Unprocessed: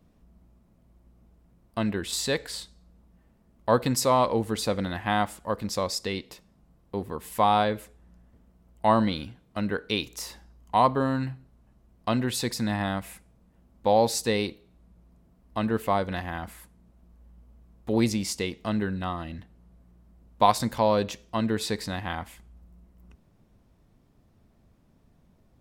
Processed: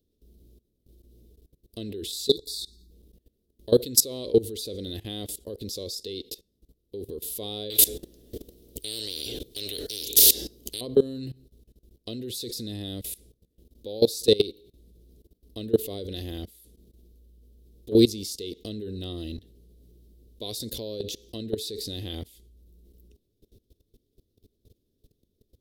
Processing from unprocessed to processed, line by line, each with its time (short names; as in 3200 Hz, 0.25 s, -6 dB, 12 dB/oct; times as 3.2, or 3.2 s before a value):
2.28–2.91 spectral delete 450–3400 Hz
7.7–10.81 spectral compressor 10:1
whole clip: EQ curve 110 Hz 0 dB, 160 Hz -9 dB, 420 Hz +9 dB, 900 Hz -26 dB, 1500 Hz -23 dB, 2400 Hz -10 dB, 3600 Hz +9 dB, 7700 Hz +3 dB, 12000 Hz +11 dB; level quantiser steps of 20 dB; gain +5.5 dB